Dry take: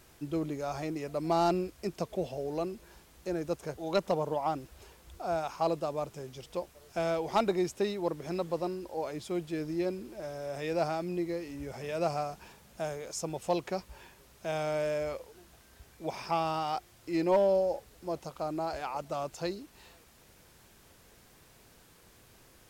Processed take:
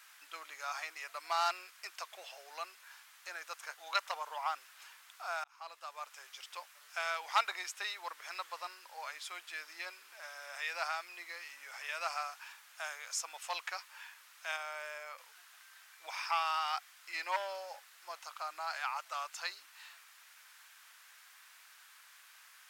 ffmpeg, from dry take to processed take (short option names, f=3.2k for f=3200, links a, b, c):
-filter_complex "[0:a]asettb=1/sr,asplit=3[a][b][c];[a]atrim=end=14.564[d];[b]atrim=start=14.56:end=15.18,asetpts=PTS-STARTPTS,afade=t=in:d=0.004:c=qsin,afade=t=out:st=0.616:d=0.004:c=qsin,equalizer=f=3.7k:w=0.34:g=-8[e];[c]atrim=start=15.176[f];[d][e]acrossfade=d=0.004:c1=hsin:c2=qsin[g];[g][f]acrossfade=d=0.004:c1=qsin:c2=hsin,asplit=2[h][i];[h]atrim=end=5.44,asetpts=PTS-STARTPTS,afade=t=out:st=5.436:d=0.004:c=hsin[j];[i]atrim=start=5.44,asetpts=PTS-STARTPTS,afade=t=in:d=0.82[k];[j][k]concat=n=2:v=0:a=1,highpass=f=1.3k:w=0.5412,highpass=f=1.3k:w=1.3066,highshelf=f=2.1k:g=-10.5,volume=11dB"